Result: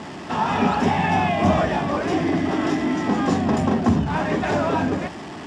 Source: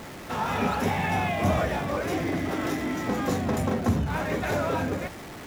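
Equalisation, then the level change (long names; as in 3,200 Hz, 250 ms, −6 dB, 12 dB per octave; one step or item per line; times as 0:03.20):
loudspeaker in its box 110–6,800 Hz, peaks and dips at 120 Hz −7 dB, 510 Hz −9 dB, 1,400 Hz −6 dB, 2,200 Hz −7 dB, 4,000 Hz −7 dB, 6,300 Hz −7 dB
+8.5 dB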